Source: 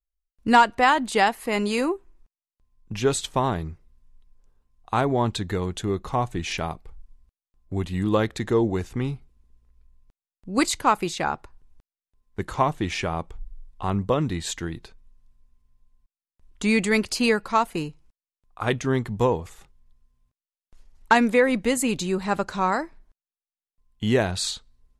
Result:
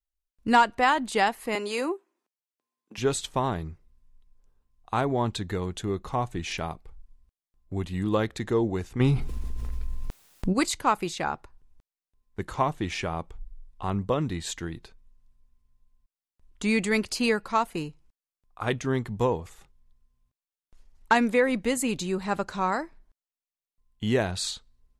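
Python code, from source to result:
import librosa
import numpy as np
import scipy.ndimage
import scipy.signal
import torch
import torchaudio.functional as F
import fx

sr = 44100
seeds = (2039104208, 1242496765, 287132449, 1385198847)

y = fx.highpass(x, sr, hz=280.0, slope=24, at=(1.55, 2.98))
y = fx.env_flatten(y, sr, amount_pct=70, at=(8.99, 10.52), fade=0.02)
y = y * 10.0 ** (-3.5 / 20.0)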